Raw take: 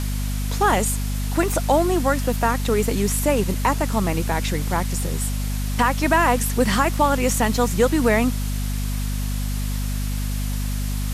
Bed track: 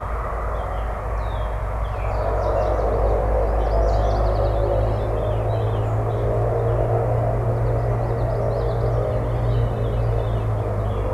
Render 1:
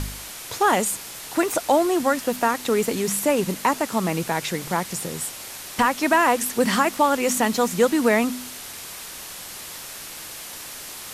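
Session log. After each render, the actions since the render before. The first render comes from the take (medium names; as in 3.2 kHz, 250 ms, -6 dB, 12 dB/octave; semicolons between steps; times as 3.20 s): de-hum 50 Hz, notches 5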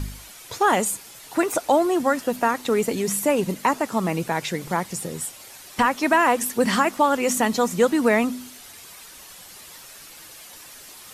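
noise reduction 9 dB, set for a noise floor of -37 dBFS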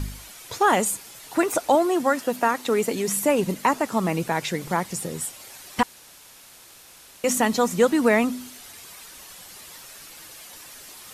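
1.75–3.17 s: high-pass 180 Hz 6 dB/octave; 5.83–7.24 s: room tone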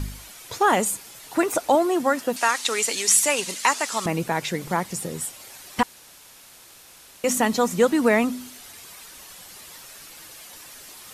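2.36–4.06 s: frequency weighting ITU-R 468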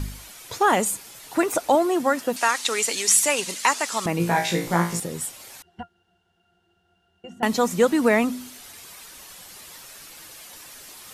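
4.18–5.00 s: flutter echo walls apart 3 m, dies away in 0.37 s; 5.62–7.43 s: pitch-class resonator F, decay 0.12 s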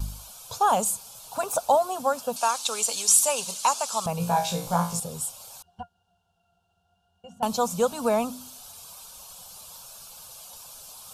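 static phaser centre 800 Hz, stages 4; vibrato 0.73 Hz 16 cents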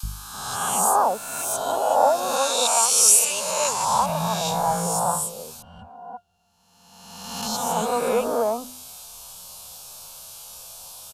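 reverse spectral sustain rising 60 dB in 1.40 s; three bands offset in time highs, lows, mids 30/340 ms, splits 240/1400 Hz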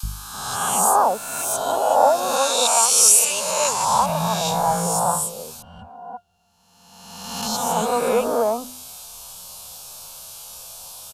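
trim +2.5 dB; peak limiter -2 dBFS, peak gain reduction 2 dB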